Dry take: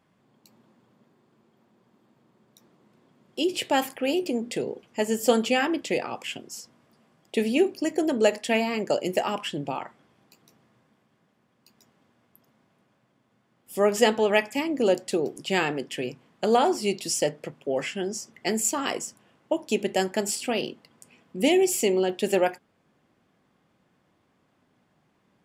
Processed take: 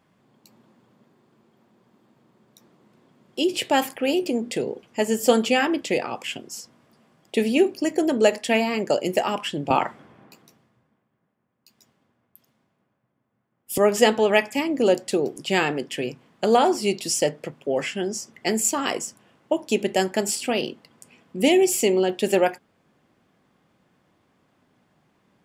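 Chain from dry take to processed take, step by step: 9.70–13.78 s: three bands expanded up and down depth 100%; trim +3 dB

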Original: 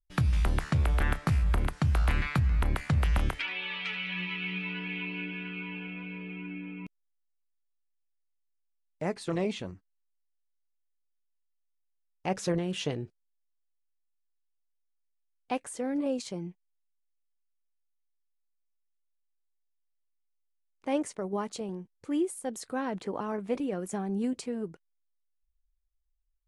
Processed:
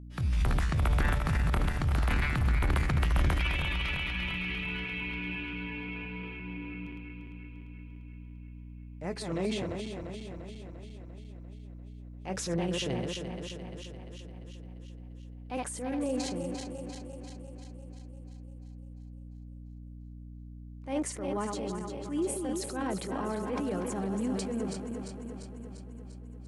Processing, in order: backward echo that repeats 173 ms, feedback 78%, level -7 dB; transient shaper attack -8 dB, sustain +6 dB; hum 60 Hz, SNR 12 dB; trim -1.5 dB

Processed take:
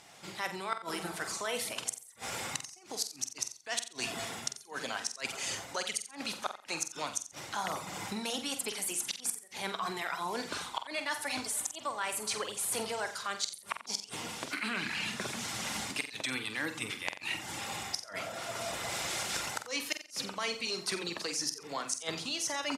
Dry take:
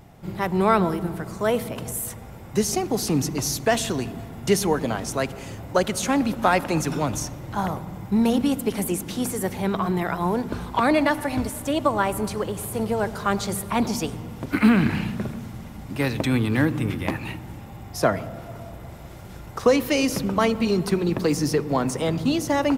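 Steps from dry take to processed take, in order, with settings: recorder AGC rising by 20 dB/s; frequency weighting ITU-R 468; inverted gate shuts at -6 dBFS, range -29 dB; reverb removal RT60 0.54 s; reverse; compression 5:1, threshold -29 dBFS, peak gain reduction 13 dB; reverse; doubling 47 ms -9 dB; feedback delay 89 ms, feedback 18%, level -14 dB; trim -4 dB

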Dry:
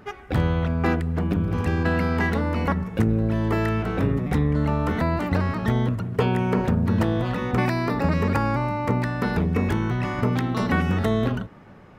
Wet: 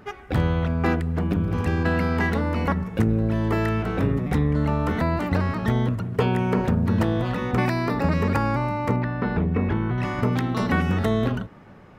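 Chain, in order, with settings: 8.96–9.98 s: distance through air 310 m

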